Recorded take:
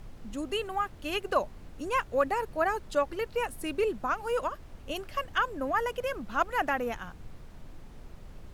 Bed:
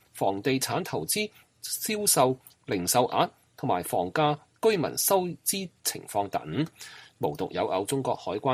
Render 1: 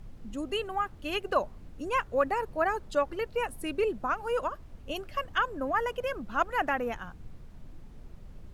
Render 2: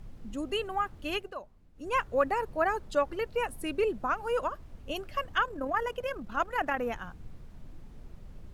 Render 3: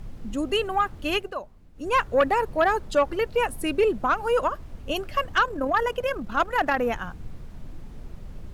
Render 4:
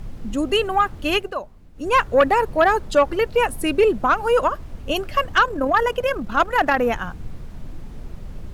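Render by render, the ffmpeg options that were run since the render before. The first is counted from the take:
ffmpeg -i in.wav -af "afftdn=noise_reduction=6:noise_floor=-48" out.wav
ffmpeg -i in.wav -filter_complex "[0:a]asettb=1/sr,asplit=3[link_01][link_02][link_03];[link_01]atrim=end=5.434[link_04];[link_02]atrim=start=5.43:end=6.79,asetpts=PTS-STARTPTS,afade=type=in:duration=0.004:curve=qsin,afade=type=out:start_time=1.356:duration=0.004:curve=qsin,tremolo=f=38:d=0.4[link_05];[link_03]atrim=start=6.786[link_06];[link_04][link_05]acrossfade=duration=0.004:curve1=hsin:curve2=qsin[link_07];[link_07][link_06]acrossfade=duration=0.004:curve1=qsin:curve2=hsin,asplit=3[link_08][link_09][link_10];[link_08]atrim=end=1.33,asetpts=PTS-STARTPTS,afade=type=out:start_time=1.13:duration=0.2:silence=0.199526[link_11];[link_09]atrim=start=1.33:end=1.74,asetpts=PTS-STARTPTS,volume=-14dB[link_12];[link_10]atrim=start=1.74,asetpts=PTS-STARTPTS,afade=type=in:duration=0.2:silence=0.199526[link_13];[link_11][link_12][link_13]concat=n=3:v=0:a=1" out.wav
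ffmpeg -i in.wav -af "aeval=exprs='0.224*sin(PI/2*1.58*val(0)/0.224)':channel_layout=same" out.wav
ffmpeg -i in.wav -af "volume=5dB" out.wav

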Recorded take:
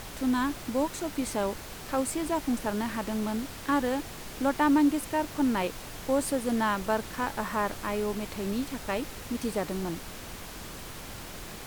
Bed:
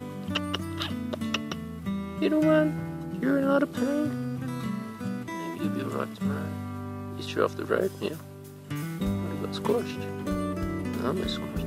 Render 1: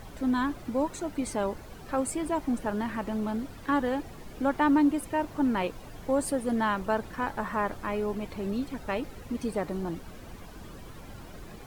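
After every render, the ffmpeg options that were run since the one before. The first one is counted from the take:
ffmpeg -i in.wav -af "afftdn=noise_reduction=12:noise_floor=-42" out.wav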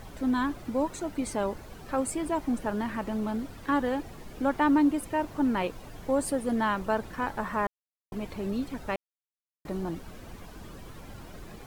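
ffmpeg -i in.wav -filter_complex "[0:a]asplit=5[link_01][link_02][link_03][link_04][link_05];[link_01]atrim=end=7.67,asetpts=PTS-STARTPTS,afade=type=out:start_time=7.666:duration=0.004:curve=hsin[link_06];[link_02]atrim=start=7.67:end=8.12,asetpts=PTS-STARTPTS,volume=0[link_07];[link_03]atrim=start=8.12:end=8.96,asetpts=PTS-STARTPTS,afade=type=in:duration=0.004:curve=hsin,afade=type=out:start_time=0.836:duration=0.004:curve=hsin[link_08];[link_04]atrim=start=8.96:end=9.65,asetpts=PTS-STARTPTS,volume=0[link_09];[link_05]atrim=start=9.65,asetpts=PTS-STARTPTS,afade=type=in:duration=0.004:curve=hsin[link_10];[link_06][link_07][link_08][link_09][link_10]concat=n=5:v=0:a=1" out.wav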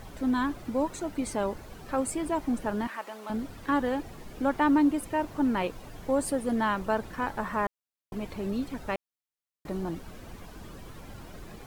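ffmpeg -i in.wav -filter_complex "[0:a]asettb=1/sr,asplit=3[link_01][link_02][link_03];[link_01]atrim=end=2.874[link_04];[link_02]atrim=start=2.87:end=3.3,asetpts=PTS-STARTPTS,afade=type=in:duration=0.004:curve=qsin,afade=type=out:start_time=0.426:duration=0.004:curve=qsin,highpass=680[link_05];[link_03]atrim=start=3.296[link_06];[link_04][link_05]acrossfade=duration=0.004:curve1=hsin:curve2=qsin[link_07];[link_07][link_06]acrossfade=duration=0.004:curve1=qsin:curve2=hsin" out.wav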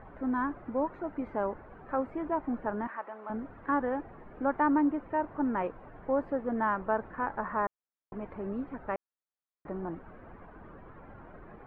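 ffmpeg -i in.wav -af "lowpass=frequency=1700:width=0.5412,lowpass=frequency=1700:width=1.3066,lowshelf=frequency=290:gain=-8" out.wav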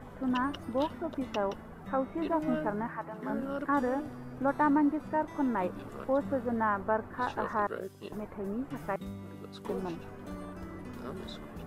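ffmpeg -i in.wav -i bed.wav -filter_complex "[1:a]volume=-13dB[link_01];[0:a][link_01]amix=inputs=2:normalize=0" out.wav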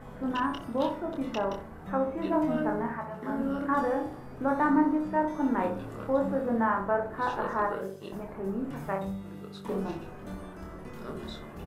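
ffmpeg -i in.wav -filter_complex "[0:a]asplit=2[link_01][link_02];[link_02]adelay=26,volume=-4dB[link_03];[link_01][link_03]amix=inputs=2:normalize=0,asplit=2[link_04][link_05];[link_05]adelay=62,lowpass=frequency=1100:poles=1,volume=-5dB,asplit=2[link_06][link_07];[link_07]adelay=62,lowpass=frequency=1100:poles=1,volume=0.46,asplit=2[link_08][link_09];[link_09]adelay=62,lowpass=frequency=1100:poles=1,volume=0.46,asplit=2[link_10][link_11];[link_11]adelay=62,lowpass=frequency=1100:poles=1,volume=0.46,asplit=2[link_12][link_13];[link_13]adelay=62,lowpass=frequency=1100:poles=1,volume=0.46,asplit=2[link_14][link_15];[link_15]adelay=62,lowpass=frequency=1100:poles=1,volume=0.46[link_16];[link_06][link_08][link_10][link_12][link_14][link_16]amix=inputs=6:normalize=0[link_17];[link_04][link_17]amix=inputs=2:normalize=0" out.wav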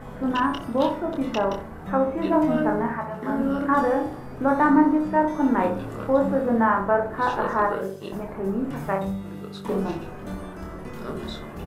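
ffmpeg -i in.wav -af "volume=6.5dB" out.wav

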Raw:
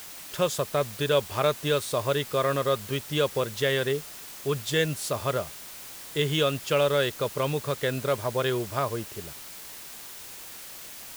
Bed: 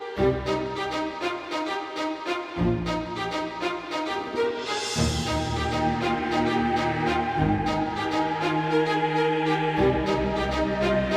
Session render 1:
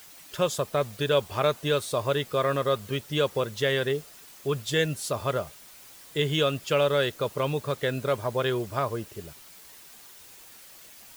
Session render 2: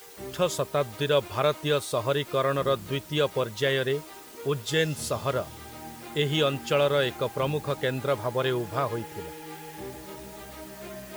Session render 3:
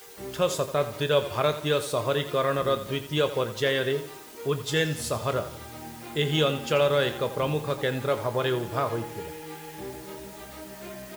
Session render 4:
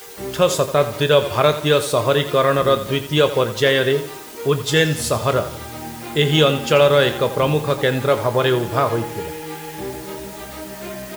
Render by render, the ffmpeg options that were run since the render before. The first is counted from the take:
ffmpeg -i in.wav -af "afftdn=noise_reduction=8:noise_floor=-43" out.wav
ffmpeg -i in.wav -i bed.wav -filter_complex "[1:a]volume=-18dB[link_01];[0:a][link_01]amix=inputs=2:normalize=0" out.wav
ffmpeg -i in.wav -filter_complex "[0:a]asplit=2[link_01][link_02];[link_02]adelay=26,volume=-12dB[link_03];[link_01][link_03]amix=inputs=2:normalize=0,aecho=1:1:85|170|255|340:0.224|0.0985|0.0433|0.0191" out.wav
ffmpeg -i in.wav -af "volume=9dB,alimiter=limit=-2dB:level=0:latency=1" out.wav

